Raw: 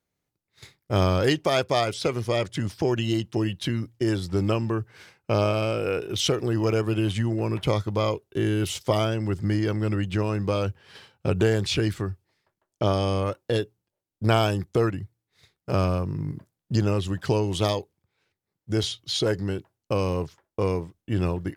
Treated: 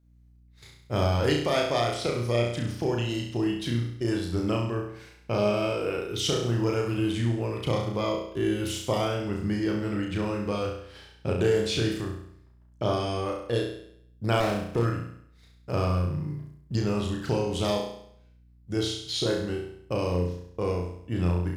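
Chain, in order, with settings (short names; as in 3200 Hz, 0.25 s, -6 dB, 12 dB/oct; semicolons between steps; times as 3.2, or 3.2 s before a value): hum 60 Hz, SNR 34 dB; flutter echo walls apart 5.8 m, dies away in 0.67 s; 14.4–14.85 running maximum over 9 samples; gain -5 dB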